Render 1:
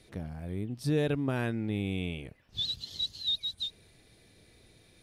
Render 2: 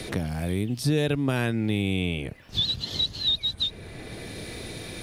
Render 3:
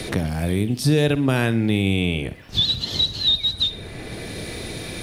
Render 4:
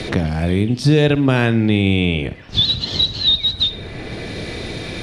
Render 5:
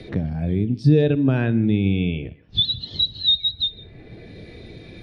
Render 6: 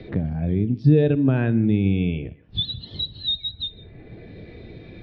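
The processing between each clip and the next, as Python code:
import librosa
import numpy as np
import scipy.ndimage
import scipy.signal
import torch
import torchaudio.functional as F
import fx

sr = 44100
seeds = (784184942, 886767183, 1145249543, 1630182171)

y1 = fx.band_squash(x, sr, depth_pct=70)
y1 = y1 * 10.0 ** (7.0 / 20.0)
y2 = fx.echo_feedback(y1, sr, ms=61, feedback_pct=45, wet_db=-15.5)
y2 = y2 * 10.0 ** (5.5 / 20.0)
y3 = scipy.signal.sosfilt(scipy.signal.butter(2, 5300.0, 'lowpass', fs=sr, output='sos'), y2)
y3 = y3 * 10.0 ** (4.5 / 20.0)
y4 = y3 + 10.0 ** (-16.0 / 20.0) * np.pad(y3, (int(158 * sr / 1000.0), 0))[:len(y3)]
y4 = fx.spectral_expand(y4, sr, expansion=1.5)
y4 = y4 * 10.0 ** (-4.5 / 20.0)
y5 = fx.air_absorb(y4, sr, metres=250.0)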